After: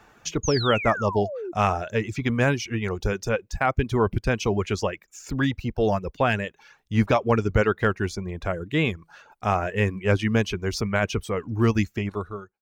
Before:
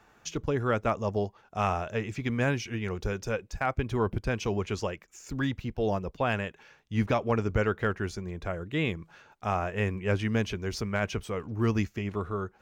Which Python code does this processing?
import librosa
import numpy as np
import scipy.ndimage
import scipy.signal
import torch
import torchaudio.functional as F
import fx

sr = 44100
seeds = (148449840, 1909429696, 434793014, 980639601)

y = fx.fade_out_tail(x, sr, length_s=0.61)
y = fx.spec_paint(y, sr, seeds[0], shape='fall', start_s=0.43, length_s=1.09, low_hz=330.0, high_hz=6800.0, level_db=-38.0)
y = fx.dereverb_blind(y, sr, rt60_s=0.55)
y = y * 10.0 ** (6.5 / 20.0)